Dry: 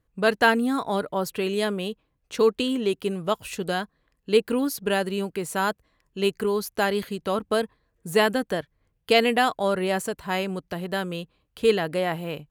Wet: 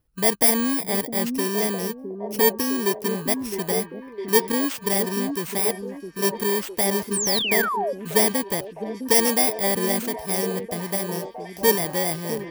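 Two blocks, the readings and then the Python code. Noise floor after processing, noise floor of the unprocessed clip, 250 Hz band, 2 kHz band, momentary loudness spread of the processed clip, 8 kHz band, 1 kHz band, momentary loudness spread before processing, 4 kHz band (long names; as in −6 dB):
−41 dBFS, −73 dBFS, +1.5 dB, −1.0 dB, 11 LU, +14.5 dB, −1.0 dB, 12 LU, +2.5 dB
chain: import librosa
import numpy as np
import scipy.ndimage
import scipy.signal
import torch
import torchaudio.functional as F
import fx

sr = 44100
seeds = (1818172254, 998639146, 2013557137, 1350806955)

y = fx.bit_reversed(x, sr, seeds[0], block=32)
y = fx.echo_stepped(y, sr, ms=659, hz=280.0, octaves=0.7, feedback_pct=70, wet_db=-4)
y = fx.spec_paint(y, sr, seeds[1], shape='fall', start_s=7.13, length_s=0.8, low_hz=510.0, high_hz=9700.0, level_db=-26.0)
y = y * 10.0 ** (1.0 / 20.0)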